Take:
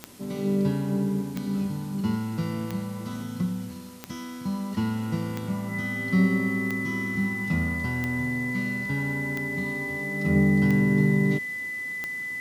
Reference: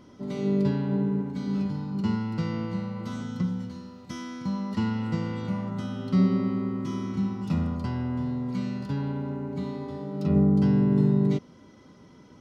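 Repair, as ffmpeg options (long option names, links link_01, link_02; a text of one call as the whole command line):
ffmpeg -i in.wav -af "adeclick=threshold=4,bandreject=frequency=2000:width=30,afwtdn=0.0028" out.wav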